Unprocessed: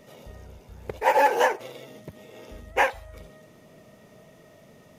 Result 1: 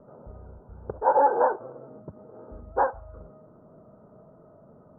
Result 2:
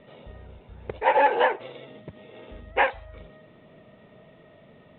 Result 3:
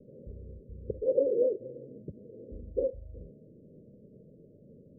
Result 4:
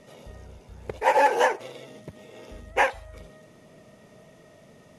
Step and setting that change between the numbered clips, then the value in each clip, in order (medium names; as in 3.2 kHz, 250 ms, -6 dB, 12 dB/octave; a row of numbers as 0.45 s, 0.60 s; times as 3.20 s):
steep low-pass, frequency: 1.5 kHz, 3.8 kHz, 550 Hz, 12 kHz